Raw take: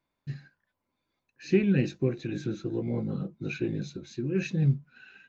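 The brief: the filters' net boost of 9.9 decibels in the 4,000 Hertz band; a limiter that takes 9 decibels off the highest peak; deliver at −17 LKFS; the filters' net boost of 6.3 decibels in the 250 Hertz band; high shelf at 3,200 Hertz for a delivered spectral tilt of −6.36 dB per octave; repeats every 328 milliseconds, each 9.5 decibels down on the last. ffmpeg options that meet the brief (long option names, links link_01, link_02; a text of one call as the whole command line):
ffmpeg -i in.wav -af "equalizer=frequency=250:width_type=o:gain=9,highshelf=frequency=3200:gain=5.5,equalizer=frequency=4000:width_type=o:gain=7.5,alimiter=limit=-16dB:level=0:latency=1,aecho=1:1:328|656|984|1312:0.335|0.111|0.0365|0.012,volume=10dB" out.wav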